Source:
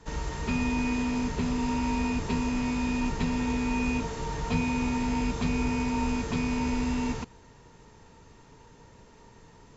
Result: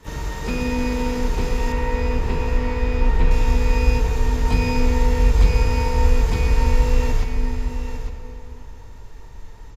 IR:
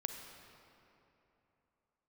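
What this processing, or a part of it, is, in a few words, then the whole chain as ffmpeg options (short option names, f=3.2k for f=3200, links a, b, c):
shimmer-style reverb: -filter_complex "[0:a]asplit=2[a][b];[b]asetrate=88200,aresample=44100,atempo=0.5,volume=-8dB[c];[a][c]amix=inputs=2:normalize=0[d];[1:a]atrim=start_sample=2205[e];[d][e]afir=irnorm=-1:irlink=0,asettb=1/sr,asplit=3[f][g][h];[f]atrim=end=1.724[i];[g]atrim=start=1.72:end=3.31,asetpts=PTS-STARTPTS,afade=t=in:d=0.004:c=qsin,afade=t=out:st=1.586:d=0.004:c=qsin,acrossover=split=3500[j][k];[k]acompressor=threshold=-56dB:ratio=4:attack=1:release=60[l];[j][l]amix=inputs=2:normalize=0[m];[h]atrim=start=3.306[n];[i][m]acrossfade=d=0.004:c1=hsin:c2=qsin[o];[o][n]acrossfade=d=0.004:c1=qsin:c2=hsin,asubboost=boost=8.5:cutoff=63,aecho=1:1:853:0.355,volume=4dB"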